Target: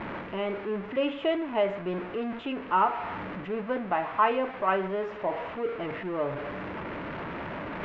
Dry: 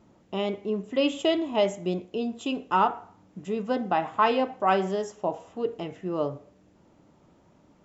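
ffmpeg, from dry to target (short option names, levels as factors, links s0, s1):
-af "aeval=exprs='val(0)+0.5*0.0316*sgn(val(0))':c=same,lowpass=f=2400:w=0.5412,lowpass=f=2400:w=1.3066,lowshelf=f=430:g=-9.5,bandreject=f=770:w=12,areverse,acompressor=mode=upward:threshold=0.0355:ratio=2.5,areverse"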